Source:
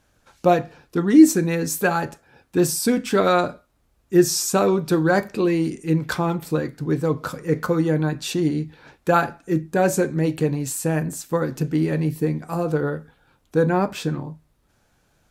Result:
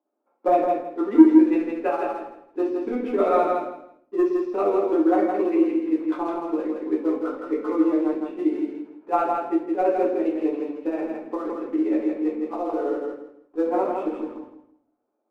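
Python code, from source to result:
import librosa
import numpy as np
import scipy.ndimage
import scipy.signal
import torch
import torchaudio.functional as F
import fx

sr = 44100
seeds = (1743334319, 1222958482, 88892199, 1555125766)

p1 = scipy.signal.sosfilt(scipy.signal.butter(4, 2400.0, 'lowpass', fs=sr, output='sos'), x)
p2 = fx.env_lowpass(p1, sr, base_hz=910.0, full_db=-14.5)
p3 = scipy.signal.sosfilt(scipy.signal.cheby1(6, 1.0, 240.0, 'highpass', fs=sr, output='sos'), p2)
p4 = fx.peak_eq(p3, sr, hz=1600.0, db=-12.5, octaves=0.43)
p5 = fx.leveller(p4, sr, passes=1)
p6 = p5 * (1.0 - 0.85 / 2.0 + 0.85 / 2.0 * np.cos(2.0 * np.pi * 15.0 * (np.arange(len(p5)) / sr)))
p7 = p6 + fx.echo_feedback(p6, sr, ms=163, feedback_pct=22, wet_db=-4, dry=0)
p8 = fx.room_shoebox(p7, sr, seeds[0], volume_m3=52.0, walls='mixed', distance_m=1.0)
y = p8 * 10.0 ** (-8.0 / 20.0)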